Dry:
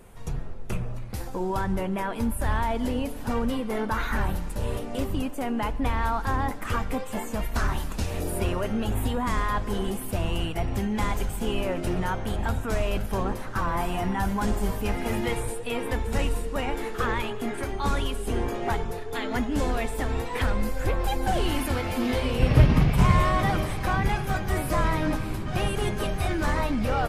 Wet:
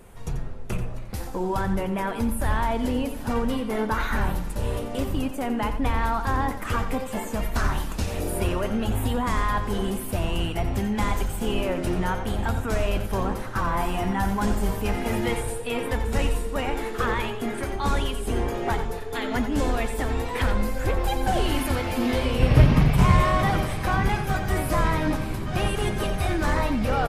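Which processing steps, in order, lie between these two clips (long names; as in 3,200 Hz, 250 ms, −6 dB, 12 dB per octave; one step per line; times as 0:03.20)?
single-tap delay 88 ms −10.5 dB
level +1.5 dB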